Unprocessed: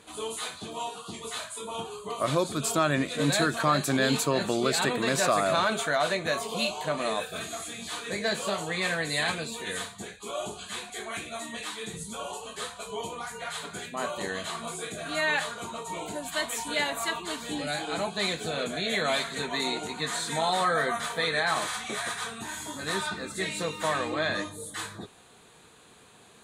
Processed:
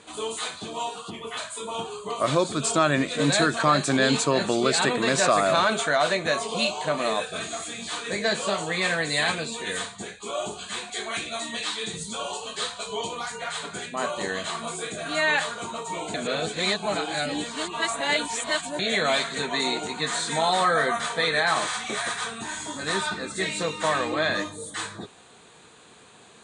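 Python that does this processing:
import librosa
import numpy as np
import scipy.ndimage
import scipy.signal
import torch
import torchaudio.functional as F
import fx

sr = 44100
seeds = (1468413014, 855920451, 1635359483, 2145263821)

y = fx.spec_box(x, sr, start_s=1.1, length_s=0.27, low_hz=3500.0, high_hz=9700.0, gain_db=-15)
y = fx.peak_eq(y, sr, hz=4200.0, db=6.0, octaves=1.1, at=(10.91, 13.36))
y = fx.edit(y, sr, fx.reverse_span(start_s=16.14, length_s=2.65), tone=tone)
y = scipy.signal.sosfilt(scipy.signal.butter(16, 9500.0, 'lowpass', fs=sr, output='sos'), y)
y = fx.low_shelf(y, sr, hz=83.0, db=-8.0)
y = y * librosa.db_to_amplitude(4.0)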